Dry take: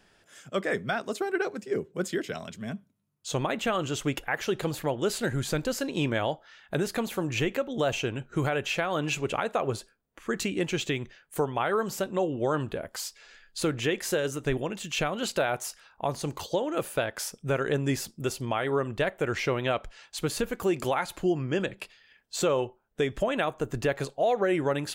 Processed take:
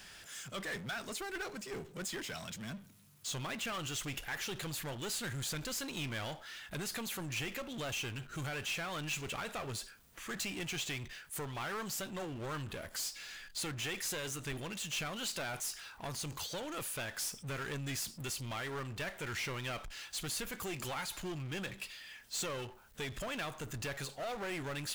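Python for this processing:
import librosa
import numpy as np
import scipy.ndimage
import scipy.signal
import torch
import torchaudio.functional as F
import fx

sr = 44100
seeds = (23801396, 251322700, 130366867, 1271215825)

y = fx.diode_clip(x, sr, knee_db=-24.5)
y = fx.tone_stack(y, sr, knobs='5-5-5')
y = fx.power_curve(y, sr, exponent=0.5)
y = y * librosa.db_to_amplitude(-3.0)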